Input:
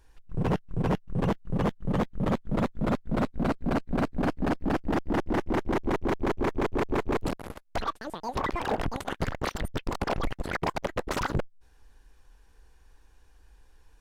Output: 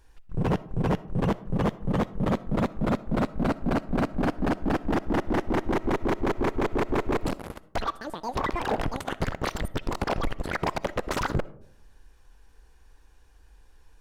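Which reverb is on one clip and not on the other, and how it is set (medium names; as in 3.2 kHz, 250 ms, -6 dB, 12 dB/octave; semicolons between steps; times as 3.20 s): algorithmic reverb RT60 0.72 s, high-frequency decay 0.3×, pre-delay 20 ms, DRR 18 dB; trim +1.5 dB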